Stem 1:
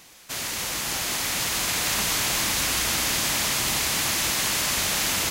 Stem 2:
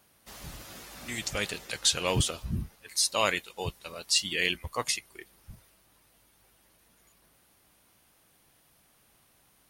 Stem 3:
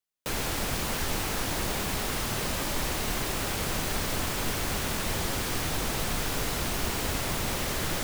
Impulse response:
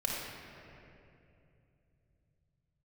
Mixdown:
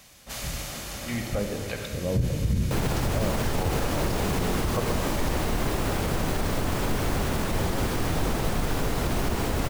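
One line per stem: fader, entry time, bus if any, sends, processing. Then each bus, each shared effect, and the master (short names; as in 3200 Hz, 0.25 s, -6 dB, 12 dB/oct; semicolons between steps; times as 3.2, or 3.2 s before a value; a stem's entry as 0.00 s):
+2.5 dB, 0.00 s, send -15.5 dB, passive tone stack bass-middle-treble 5-5-5; vocal rider within 5 dB; auto duck -15 dB, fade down 1.70 s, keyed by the second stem
0.0 dB, 0.00 s, send -5.5 dB, treble ducked by the level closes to 340 Hz, closed at -26 dBFS
+2.0 dB, 2.45 s, no send, dry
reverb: on, RT60 2.8 s, pre-delay 4 ms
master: tilt shelf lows +5.5 dB, about 1400 Hz; limiter -16 dBFS, peak gain reduction 9.5 dB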